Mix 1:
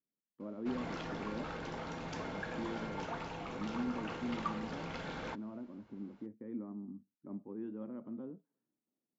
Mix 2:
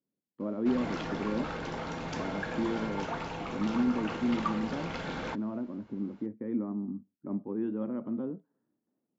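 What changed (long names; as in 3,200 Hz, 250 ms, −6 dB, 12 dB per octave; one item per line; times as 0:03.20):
speech +10.0 dB
background +5.5 dB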